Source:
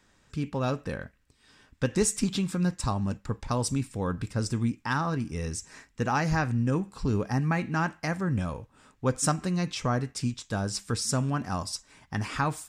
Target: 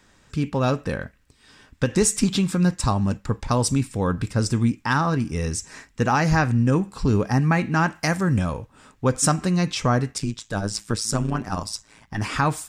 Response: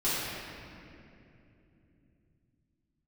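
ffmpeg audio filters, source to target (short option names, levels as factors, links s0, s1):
-filter_complex "[0:a]asettb=1/sr,asplit=3[s0][s1][s2];[s0]atrim=end=7.954[s3];[s1]atrim=start=7.95:end=8.39,asetpts=PTS-STARTPTS,afade=t=in:d=0.004:c=qsin,afade=t=out:st=0.436:d=0.004:c=qsin,highshelf=f=4800:g=9.5[s4];[s2]atrim=start=8.386[s5];[s3][s4]acrossfade=d=0.004:c1=hsin:c2=qsin[s6];[s6][s5]acrossfade=d=0.004:c1=qsin:c2=hsin,asettb=1/sr,asplit=3[s7][s8][s9];[s7]atrim=end=10.184[s10];[s8]atrim=start=10.18:end=12.22,asetpts=PTS-STARTPTS,afade=t=in:d=0.004:c=qsin,afade=t=out:st=2.036:d=0.004:c=qsin,tremolo=f=110:d=0.788[s11];[s9]atrim=start=12.216[s12];[s10][s11]acrossfade=d=0.004:c1=hsin:c2=qsin[s13];[s13][s12]acrossfade=d=0.004:c1=qsin:c2=hsin,alimiter=level_in=5.01:limit=0.891:release=50:level=0:latency=1,volume=0.447"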